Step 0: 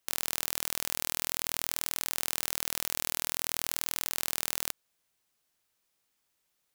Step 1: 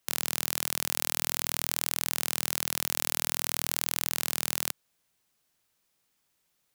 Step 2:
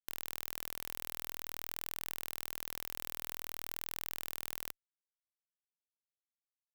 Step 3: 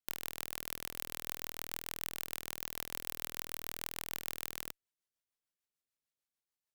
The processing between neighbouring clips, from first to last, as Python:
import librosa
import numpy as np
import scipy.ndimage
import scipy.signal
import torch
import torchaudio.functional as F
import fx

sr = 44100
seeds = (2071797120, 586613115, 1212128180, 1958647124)

y1 = fx.peak_eq(x, sr, hz=150.0, db=4.5, octaves=1.4)
y1 = y1 * 10.0 ** (2.5 / 20.0)
y2 = fx.fuzz(y1, sr, gain_db=25.0, gate_db=-34.0)
y2 = y2 * 10.0 ** (-5.0 / 20.0)
y3 = fx.rotary(y2, sr, hz=6.7)
y3 = y3 * 10.0 ** (4.5 / 20.0)